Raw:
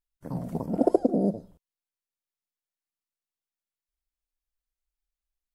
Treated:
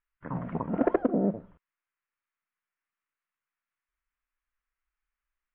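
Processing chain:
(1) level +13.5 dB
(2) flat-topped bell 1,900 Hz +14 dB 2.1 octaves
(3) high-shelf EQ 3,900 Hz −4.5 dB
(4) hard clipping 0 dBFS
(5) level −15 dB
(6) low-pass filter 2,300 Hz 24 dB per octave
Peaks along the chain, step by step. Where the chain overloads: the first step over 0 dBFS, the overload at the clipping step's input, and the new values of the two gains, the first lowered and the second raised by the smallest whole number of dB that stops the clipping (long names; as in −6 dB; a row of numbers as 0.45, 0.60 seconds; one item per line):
+5.5, +5.5, +5.5, 0.0, −15.0, −14.5 dBFS
step 1, 5.5 dB
step 1 +7.5 dB, step 5 −9 dB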